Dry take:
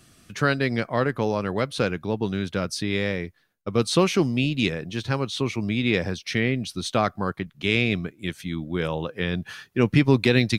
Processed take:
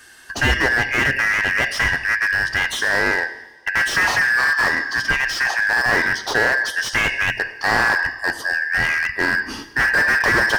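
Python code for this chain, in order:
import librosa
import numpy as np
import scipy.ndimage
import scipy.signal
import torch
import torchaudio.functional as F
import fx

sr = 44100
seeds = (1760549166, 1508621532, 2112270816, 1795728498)

y = fx.band_shuffle(x, sr, order='2143')
y = fx.peak_eq(y, sr, hz=180.0, db=-11.5, octaves=0.23)
y = fx.rev_double_slope(y, sr, seeds[0], early_s=0.85, late_s=2.4, knee_db=-18, drr_db=9.0)
y = fx.slew_limit(y, sr, full_power_hz=120.0)
y = F.gain(torch.from_numpy(y), 8.5).numpy()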